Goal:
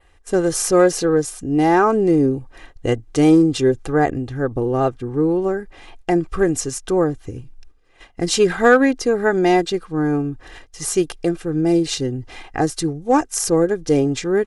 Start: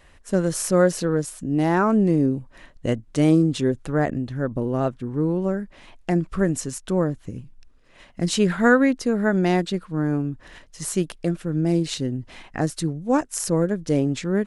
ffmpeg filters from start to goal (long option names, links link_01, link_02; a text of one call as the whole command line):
ffmpeg -i in.wav -filter_complex "[0:a]agate=range=-8dB:threshold=-48dB:ratio=16:detection=peak,equalizer=frequency=690:width_type=o:width=1.1:gain=3,aecho=1:1:2.5:0.61,adynamicequalizer=threshold=0.00631:dfrequency=5800:dqfactor=2.3:tfrequency=5800:tqfactor=2.3:attack=5:release=100:ratio=0.375:range=2:mode=boostabove:tftype=bell,asplit=2[link_01][link_02];[link_02]volume=11dB,asoftclip=hard,volume=-11dB,volume=-8dB[link_03];[link_01][link_03]amix=inputs=2:normalize=0" out.wav